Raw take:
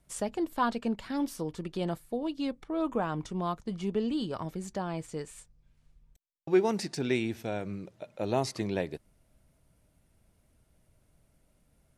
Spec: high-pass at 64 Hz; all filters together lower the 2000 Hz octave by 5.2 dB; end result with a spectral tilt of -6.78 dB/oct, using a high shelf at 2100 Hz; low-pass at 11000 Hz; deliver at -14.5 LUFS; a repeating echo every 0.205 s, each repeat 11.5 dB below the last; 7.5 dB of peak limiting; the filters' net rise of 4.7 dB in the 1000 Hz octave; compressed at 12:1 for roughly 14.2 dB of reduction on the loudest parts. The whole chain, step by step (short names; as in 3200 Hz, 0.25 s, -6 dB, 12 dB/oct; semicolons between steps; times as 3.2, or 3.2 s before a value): HPF 64 Hz; LPF 11000 Hz; bell 1000 Hz +8.5 dB; bell 2000 Hz -8 dB; high shelf 2100 Hz -5 dB; compressor 12:1, threshold -32 dBFS; limiter -29 dBFS; feedback echo 0.205 s, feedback 27%, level -11.5 dB; gain +25 dB